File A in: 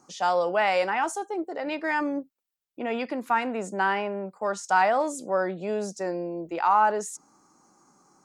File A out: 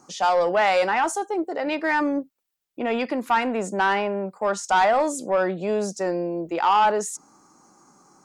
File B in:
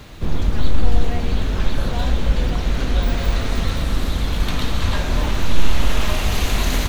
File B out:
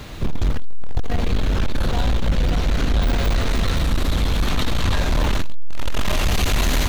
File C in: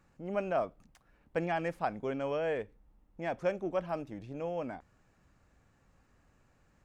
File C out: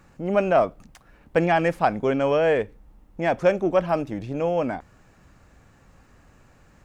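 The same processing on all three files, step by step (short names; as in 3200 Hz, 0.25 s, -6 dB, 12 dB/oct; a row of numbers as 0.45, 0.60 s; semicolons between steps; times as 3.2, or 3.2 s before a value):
soft clip -17.5 dBFS; match loudness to -23 LUFS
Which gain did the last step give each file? +5.5, +4.5, +13.0 dB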